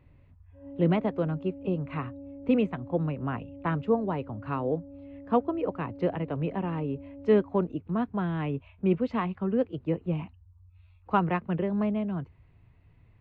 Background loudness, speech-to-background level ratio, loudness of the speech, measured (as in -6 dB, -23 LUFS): -45.5 LUFS, 16.0 dB, -29.5 LUFS